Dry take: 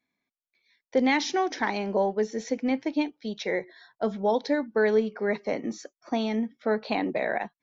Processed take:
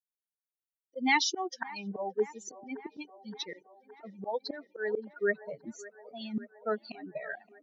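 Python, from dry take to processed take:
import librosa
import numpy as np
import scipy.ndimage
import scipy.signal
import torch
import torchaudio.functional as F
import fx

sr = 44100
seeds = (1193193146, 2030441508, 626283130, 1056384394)

y = fx.bin_expand(x, sr, power=3.0)
y = fx.auto_swell(y, sr, attack_ms=237.0)
y = fx.highpass(y, sr, hz=310.0, slope=6)
y = fx.echo_wet_bandpass(y, sr, ms=569, feedback_pct=67, hz=840.0, wet_db=-16.0)
y = y * librosa.db_to_amplitude(6.5)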